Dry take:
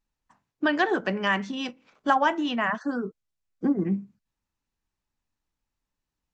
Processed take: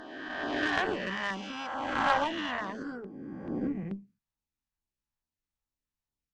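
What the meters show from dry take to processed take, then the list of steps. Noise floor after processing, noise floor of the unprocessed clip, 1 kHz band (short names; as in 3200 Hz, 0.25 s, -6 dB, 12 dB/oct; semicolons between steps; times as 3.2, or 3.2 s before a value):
under -85 dBFS, under -85 dBFS, -4.5 dB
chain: spectral swells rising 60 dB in 2.29 s; added harmonics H 3 -15 dB, 4 -22 dB, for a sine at -4 dBFS; LFO notch saw down 2.3 Hz 210–2600 Hz; gain -5 dB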